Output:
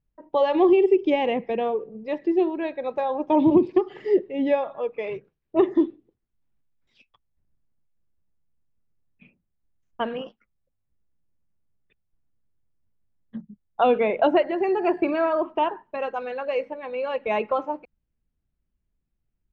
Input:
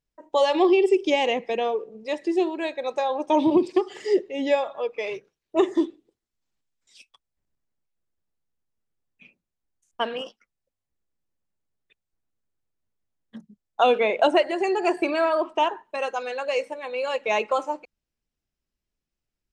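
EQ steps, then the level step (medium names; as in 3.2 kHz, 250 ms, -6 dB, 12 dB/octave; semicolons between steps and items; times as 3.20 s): distance through air 190 m; tone controls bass +10 dB, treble -6 dB; treble shelf 3.9 kHz -6.5 dB; 0.0 dB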